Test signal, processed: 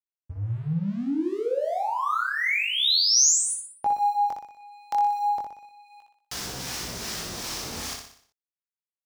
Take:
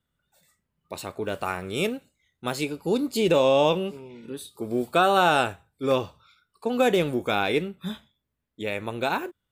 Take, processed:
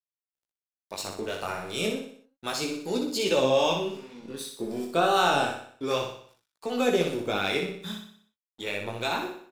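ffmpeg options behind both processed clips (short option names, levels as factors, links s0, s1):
-filter_complex "[0:a]highpass=f=92:p=1,equalizer=f=5500:w=1.6:g=10.5,asplit=2[s0][s1];[s1]acompressor=threshold=0.0158:ratio=6,volume=1.12[s2];[s0][s2]amix=inputs=2:normalize=0,aeval=exprs='sgn(val(0))*max(abs(val(0))-0.00708,0)':c=same,flanger=delay=15.5:depth=7.9:speed=0.31,acrossover=split=800[s3][s4];[s3]aeval=exprs='val(0)*(1-0.5/2+0.5/2*cos(2*PI*2.6*n/s))':c=same[s5];[s4]aeval=exprs='val(0)*(1-0.5/2-0.5/2*cos(2*PI*2.6*n/s))':c=same[s6];[s5][s6]amix=inputs=2:normalize=0,asplit=2[s7][s8];[s8]aecho=0:1:61|122|183|244|305|366:0.531|0.255|0.122|0.0587|0.0282|0.0135[s9];[s7][s9]amix=inputs=2:normalize=0"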